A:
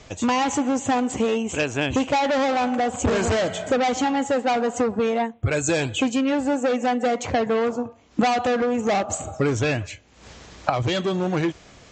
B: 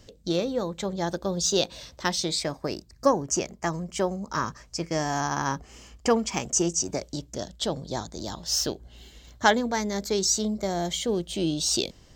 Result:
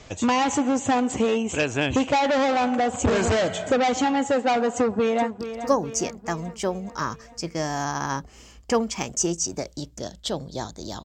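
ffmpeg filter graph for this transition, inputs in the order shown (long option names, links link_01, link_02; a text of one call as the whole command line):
ffmpeg -i cue0.wav -i cue1.wav -filter_complex "[0:a]apad=whole_dur=11.04,atrim=end=11.04,atrim=end=5.402[link_01];[1:a]atrim=start=2.758:end=8.4[link_02];[link_01][link_02]acrossfade=duration=0.004:curve1=hsin:curve2=hsin,asplit=2[link_03][link_04];[link_04]afade=type=in:start_time=4.76:duration=0.01,afade=type=out:start_time=5.4:duration=0.01,aecho=0:1:420|840|1260|1680|2100|2520|2940:0.298538|0.179123|0.107474|0.0644843|0.0386906|0.0232143|0.0139286[link_05];[link_03][link_05]amix=inputs=2:normalize=0" out.wav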